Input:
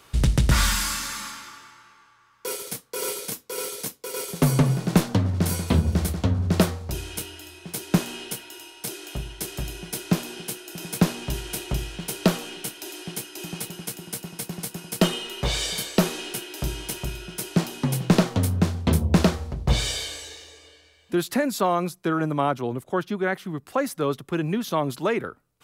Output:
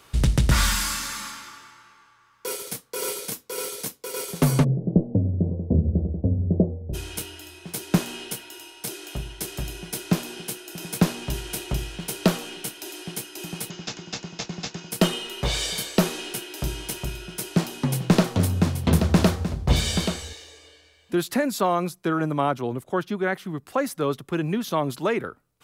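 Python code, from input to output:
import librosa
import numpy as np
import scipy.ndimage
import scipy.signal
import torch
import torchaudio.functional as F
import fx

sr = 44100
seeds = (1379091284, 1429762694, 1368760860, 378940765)

y = fx.steep_lowpass(x, sr, hz=590.0, slope=36, at=(4.63, 6.93), fade=0.02)
y = fx.resample_bad(y, sr, factor=3, down='none', up='filtered', at=(13.7, 14.91))
y = fx.echo_single(y, sr, ms=830, db=-7.5, at=(17.41, 20.33))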